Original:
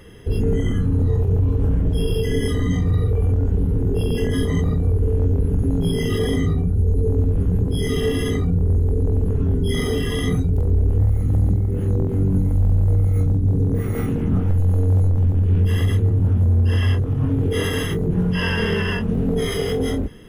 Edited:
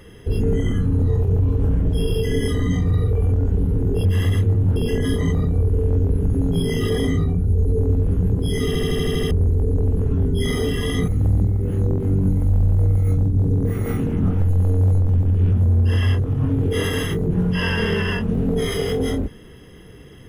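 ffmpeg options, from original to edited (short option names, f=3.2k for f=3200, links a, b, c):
-filter_complex "[0:a]asplit=13[a][b][c][d][e][f][g][h][i][j][k][l][m];[a]atrim=end=4.052[n];[b]atrim=start=15.608:end=16.322[o];[c]atrim=start=4.048:end=8.042[p];[d]atrim=start=7.958:end=8.042[q];[e]atrim=start=7.958:end=8.042[r];[f]atrim=start=7.958:end=8.042[s];[g]atrim=start=7.958:end=8.042[t];[h]atrim=start=7.958:end=8.042[u];[i]atrim=start=7.958:end=8.042[v];[j]atrim=start=7.958:end=8.042[w];[k]atrim=start=8.598:end=10.372[x];[l]atrim=start=11.168:end=15.612[y];[m]atrim=start=16.318[z];[n][o]acrossfade=d=0.004:c1=hsin:c2=hsin[aa];[aa][p]acrossfade=d=0.004:c1=hsin:c2=hsin[ab];[ab][q]acrossfade=d=0.004:c1=hsin:c2=hsin[ac];[ac][r]acrossfade=d=0.004:c1=hsin:c2=hsin[ad];[ad][s]acrossfade=d=0.004:c1=hsin:c2=hsin[ae];[ae][t]acrossfade=d=0.004:c1=hsin:c2=hsin[af];[af][u]acrossfade=d=0.004:c1=hsin:c2=hsin[ag];[ag][v]acrossfade=d=0.004:c1=hsin:c2=hsin[ah];[ah][w]acrossfade=d=0.004:c1=hsin:c2=hsin[ai];[ai][x]acrossfade=d=0.004:c1=hsin:c2=hsin[aj];[aj][y]acrossfade=d=0.004:c1=hsin:c2=hsin[ak];[ak][z]acrossfade=d=0.004:c1=hsin:c2=hsin"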